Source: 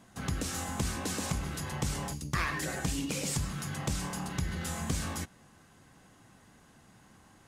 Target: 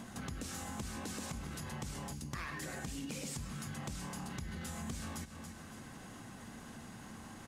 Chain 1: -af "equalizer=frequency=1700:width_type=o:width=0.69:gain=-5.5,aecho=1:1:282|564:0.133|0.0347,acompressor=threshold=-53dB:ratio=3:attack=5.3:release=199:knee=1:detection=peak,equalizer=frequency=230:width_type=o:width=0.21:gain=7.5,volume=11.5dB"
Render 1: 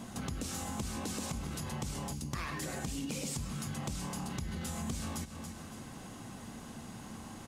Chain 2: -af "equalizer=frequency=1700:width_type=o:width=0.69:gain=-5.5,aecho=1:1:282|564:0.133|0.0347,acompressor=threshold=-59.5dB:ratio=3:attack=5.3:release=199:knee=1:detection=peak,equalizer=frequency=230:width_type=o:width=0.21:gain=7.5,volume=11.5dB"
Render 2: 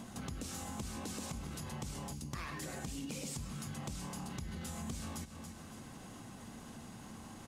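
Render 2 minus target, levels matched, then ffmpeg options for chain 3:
2,000 Hz band −3.5 dB
-af "aecho=1:1:282|564:0.133|0.0347,acompressor=threshold=-59.5dB:ratio=3:attack=5.3:release=199:knee=1:detection=peak,equalizer=frequency=230:width_type=o:width=0.21:gain=7.5,volume=11.5dB"

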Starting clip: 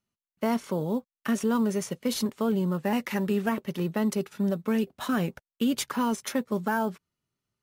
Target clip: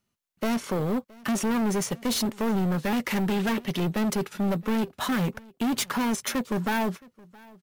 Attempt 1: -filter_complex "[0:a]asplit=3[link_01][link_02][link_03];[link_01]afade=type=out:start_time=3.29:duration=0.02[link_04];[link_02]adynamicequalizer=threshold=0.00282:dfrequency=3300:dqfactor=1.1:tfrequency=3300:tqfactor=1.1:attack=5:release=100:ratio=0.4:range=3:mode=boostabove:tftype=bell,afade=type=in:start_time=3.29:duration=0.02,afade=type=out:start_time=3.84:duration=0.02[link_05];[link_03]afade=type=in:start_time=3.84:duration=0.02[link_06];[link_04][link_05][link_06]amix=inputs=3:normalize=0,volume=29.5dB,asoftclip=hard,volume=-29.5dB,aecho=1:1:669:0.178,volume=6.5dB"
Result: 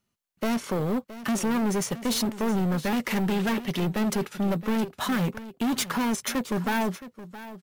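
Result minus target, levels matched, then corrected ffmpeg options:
echo-to-direct +9 dB
-filter_complex "[0:a]asplit=3[link_01][link_02][link_03];[link_01]afade=type=out:start_time=3.29:duration=0.02[link_04];[link_02]adynamicequalizer=threshold=0.00282:dfrequency=3300:dqfactor=1.1:tfrequency=3300:tqfactor=1.1:attack=5:release=100:ratio=0.4:range=3:mode=boostabove:tftype=bell,afade=type=in:start_time=3.29:duration=0.02,afade=type=out:start_time=3.84:duration=0.02[link_05];[link_03]afade=type=in:start_time=3.84:duration=0.02[link_06];[link_04][link_05][link_06]amix=inputs=3:normalize=0,volume=29.5dB,asoftclip=hard,volume=-29.5dB,aecho=1:1:669:0.0631,volume=6.5dB"

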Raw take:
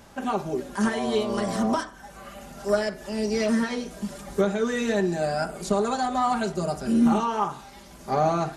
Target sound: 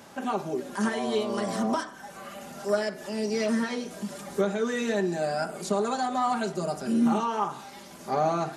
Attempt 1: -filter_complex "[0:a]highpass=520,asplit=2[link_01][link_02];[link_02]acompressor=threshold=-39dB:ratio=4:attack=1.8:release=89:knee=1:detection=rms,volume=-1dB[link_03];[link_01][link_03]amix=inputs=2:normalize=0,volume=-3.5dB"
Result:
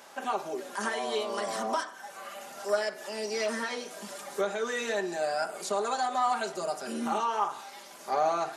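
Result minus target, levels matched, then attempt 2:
125 Hz band −12.5 dB
-filter_complex "[0:a]highpass=160,asplit=2[link_01][link_02];[link_02]acompressor=threshold=-39dB:ratio=4:attack=1.8:release=89:knee=1:detection=rms,volume=-1dB[link_03];[link_01][link_03]amix=inputs=2:normalize=0,volume=-3.5dB"

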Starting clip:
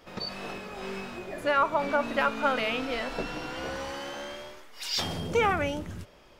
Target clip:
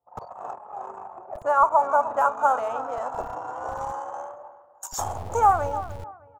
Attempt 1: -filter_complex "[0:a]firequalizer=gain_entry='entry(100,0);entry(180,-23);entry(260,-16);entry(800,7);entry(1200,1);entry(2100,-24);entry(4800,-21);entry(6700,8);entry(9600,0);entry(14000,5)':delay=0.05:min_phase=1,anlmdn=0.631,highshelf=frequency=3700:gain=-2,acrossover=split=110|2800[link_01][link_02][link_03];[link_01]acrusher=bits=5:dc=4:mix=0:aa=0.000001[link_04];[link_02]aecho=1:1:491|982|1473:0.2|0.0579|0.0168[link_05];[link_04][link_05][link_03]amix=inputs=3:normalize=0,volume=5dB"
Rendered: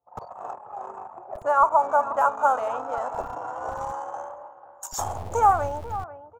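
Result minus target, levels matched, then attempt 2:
echo 185 ms late
-filter_complex "[0:a]firequalizer=gain_entry='entry(100,0);entry(180,-23);entry(260,-16);entry(800,7);entry(1200,1);entry(2100,-24);entry(4800,-21);entry(6700,8);entry(9600,0);entry(14000,5)':delay=0.05:min_phase=1,anlmdn=0.631,highshelf=frequency=3700:gain=-2,acrossover=split=110|2800[link_01][link_02][link_03];[link_01]acrusher=bits=5:dc=4:mix=0:aa=0.000001[link_04];[link_02]aecho=1:1:306|612|918:0.2|0.0579|0.0168[link_05];[link_04][link_05][link_03]amix=inputs=3:normalize=0,volume=5dB"

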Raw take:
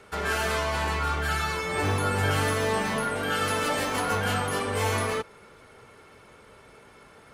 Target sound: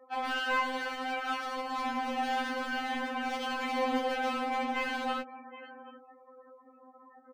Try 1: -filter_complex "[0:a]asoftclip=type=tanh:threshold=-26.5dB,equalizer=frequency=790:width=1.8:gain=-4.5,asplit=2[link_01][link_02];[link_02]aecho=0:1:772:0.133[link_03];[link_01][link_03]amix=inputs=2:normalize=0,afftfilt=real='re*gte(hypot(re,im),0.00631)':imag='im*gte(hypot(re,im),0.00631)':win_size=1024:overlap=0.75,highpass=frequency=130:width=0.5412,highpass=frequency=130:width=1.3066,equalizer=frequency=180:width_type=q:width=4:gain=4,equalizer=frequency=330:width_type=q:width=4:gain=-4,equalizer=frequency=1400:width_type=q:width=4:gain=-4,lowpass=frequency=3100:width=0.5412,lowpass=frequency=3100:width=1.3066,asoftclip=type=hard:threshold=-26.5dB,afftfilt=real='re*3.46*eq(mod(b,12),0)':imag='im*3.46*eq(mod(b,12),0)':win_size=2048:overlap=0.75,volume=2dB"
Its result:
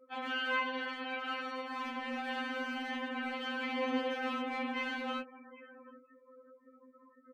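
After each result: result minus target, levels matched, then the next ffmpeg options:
soft clipping: distortion +13 dB; 1,000 Hz band −3.0 dB
-filter_complex "[0:a]asoftclip=type=tanh:threshold=-16dB,equalizer=frequency=790:width=1.8:gain=-4.5,asplit=2[link_01][link_02];[link_02]aecho=0:1:772:0.133[link_03];[link_01][link_03]amix=inputs=2:normalize=0,afftfilt=real='re*gte(hypot(re,im),0.00631)':imag='im*gte(hypot(re,im),0.00631)':win_size=1024:overlap=0.75,highpass=frequency=130:width=0.5412,highpass=frequency=130:width=1.3066,equalizer=frequency=180:width_type=q:width=4:gain=4,equalizer=frequency=330:width_type=q:width=4:gain=-4,equalizer=frequency=1400:width_type=q:width=4:gain=-4,lowpass=frequency=3100:width=0.5412,lowpass=frequency=3100:width=1.3066,asoftclip=type=hard:threshold=-26.5dB,afftfilt=real='re*3.46*eq(mod(b,12),0)':imag='im*3.46*eq(mod(b,12),0)':win_size=2048:overlap=0.75,volume=2dB"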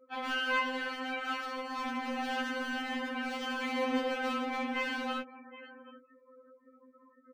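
1,000 Hz band −3.0 dB
-filter_complex "[0:a]asoftclip=type=tanh:threshold=-16dB,equalizer=frequency=790:width=1.8:gain=3,asplit=2[link_01][link_02];[link_02]aecho=0:1:772:0.133[link_03];[link_01][link_03]amix=inputs=2:normalize=0,afftfilt=real='re*gte(hypot(re,im),0.00631)':imag='im*gte(hypot(re,im),0.00631)':win_size=1024:overlap=0.75,highpass=frequency=130:width=0.5412,highpass=frequency=130:width=1.3066,equalizer=frequency=180:width_type=q:width=4:gain=4,equalizer=frequency=330:width_type=q:width=4:gain=-4,equalizer=frequency=1400:width_type=q:width=4:gain=-4,lowpass=frequency=3100:width=0.5412,lowpass=frequency=3100:width=1.3066,asoftclip=type=hard:threshold=-26.5dB,afftfilt=real='re*3.46*eq(mod(b,12),0)':imag='im*3.46*eq(mod(b,12),0)':win_size=2048:overlap=0.75,volume=2dB"

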